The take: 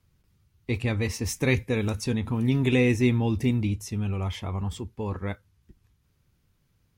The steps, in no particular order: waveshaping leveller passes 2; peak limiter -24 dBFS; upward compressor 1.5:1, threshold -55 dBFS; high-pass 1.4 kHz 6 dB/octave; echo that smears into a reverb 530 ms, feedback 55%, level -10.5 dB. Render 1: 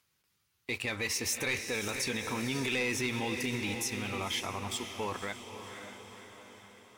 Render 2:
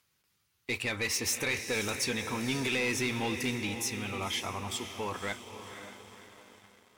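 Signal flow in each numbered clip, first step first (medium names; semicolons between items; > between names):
high-pass > upward compressor > waveshaping leveller > echo that smears into a reverb > peak limiter; high-pass > peak limiter > echo that smears into a reverb > waveshaping leveller > upward compressor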